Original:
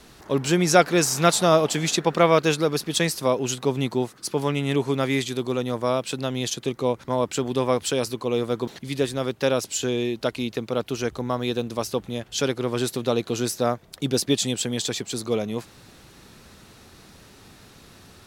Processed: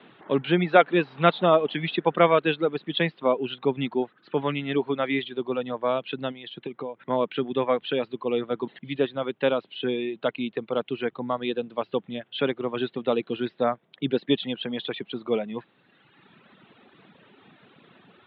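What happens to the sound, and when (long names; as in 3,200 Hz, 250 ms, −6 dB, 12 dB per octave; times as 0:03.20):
0:06.31–0:06.97: downward compressor, threshold −27 dBFS
whole clip: high-pass filter 150 Hz 24 dB per octave; reverb reduction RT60 1.6 s; Butterworth low-pass 3,600 Hz 72 dB per octave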